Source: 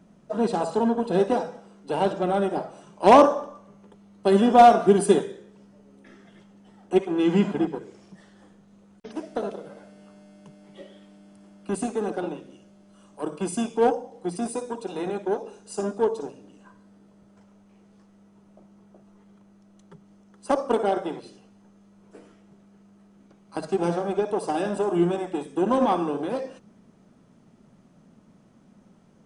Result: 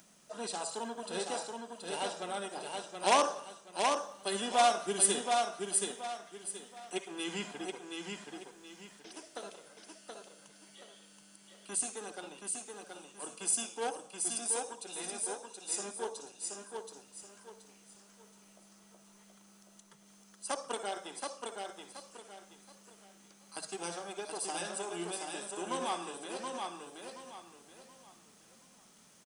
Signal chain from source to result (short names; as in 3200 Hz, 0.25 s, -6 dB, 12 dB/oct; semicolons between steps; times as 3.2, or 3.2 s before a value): pre-emphasis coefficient 0.97; upward compressor, threshold -59 dBFS; feedback echo 0.726 s, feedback 31%, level -4 dB; gain +5.5 dB